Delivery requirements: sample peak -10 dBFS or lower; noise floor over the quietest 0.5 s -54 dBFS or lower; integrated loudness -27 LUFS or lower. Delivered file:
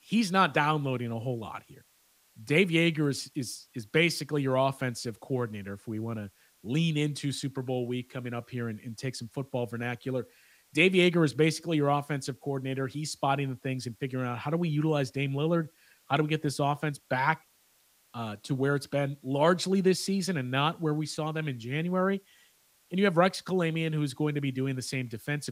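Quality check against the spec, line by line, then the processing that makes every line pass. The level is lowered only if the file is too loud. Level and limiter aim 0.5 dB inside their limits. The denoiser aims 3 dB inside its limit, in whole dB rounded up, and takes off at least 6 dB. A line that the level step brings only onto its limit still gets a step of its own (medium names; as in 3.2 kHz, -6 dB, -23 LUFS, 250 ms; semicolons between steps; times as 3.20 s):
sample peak -8.5 dBFS: fail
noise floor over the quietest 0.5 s -66 dBFS: pass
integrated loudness -29.5 LUFS: pass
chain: peak limiter -10.5 dBFS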